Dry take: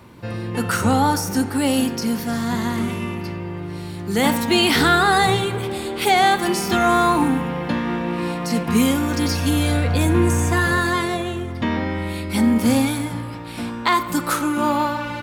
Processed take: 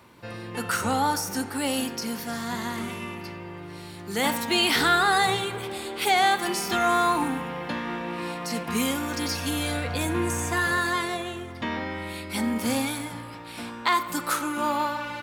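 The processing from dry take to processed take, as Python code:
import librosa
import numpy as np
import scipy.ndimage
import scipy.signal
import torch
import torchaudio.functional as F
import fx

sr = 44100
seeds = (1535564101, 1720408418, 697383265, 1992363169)

y = fx.low_shelf(x, sr, hz=360.0, db=-10.0)
y = F.gain(torch.from_numpy(y), -3.5).numpy()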